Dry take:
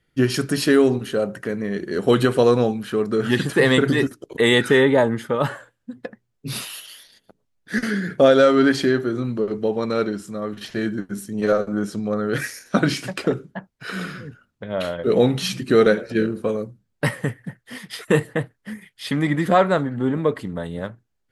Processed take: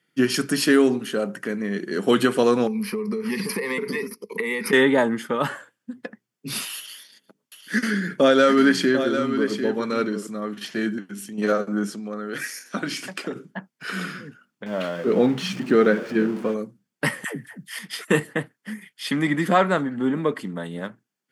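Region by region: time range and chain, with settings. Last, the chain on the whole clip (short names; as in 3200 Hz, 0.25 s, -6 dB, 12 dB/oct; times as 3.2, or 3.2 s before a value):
2.67–4.73 ripple EQ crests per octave 0.87, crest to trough 18 dB + compressor 16:1, threshold -21 dBFS
6.77–10.27 Butterworth band-stop 730 Hz, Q 7 + echo 0.747 s -9 dB
10.98–11.38 bell 2800 Hz +10.5 dB 0.71 oct + compressor 2:1, threshold -34 dBFS
11.92–13.36 compressor 1.5:1, threshold -32 dBFS + low shelf 130 Hz -10 dB
14.66–16.54 zero-crossing step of -30 dBFS + LPF 1800 Hz 6 dB/oct
17.24–17.79 tilt +2 dB/oct + notch 530 Hz, Q 11 + dispersion lows, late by 0.126 s, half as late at 480 Hz
whole clip: HPF 180 Hz 24 dB/oct; bell 550 Hz -6 dB 1.5 oct; notch 3900 Hz, Q 11; gain +2 dB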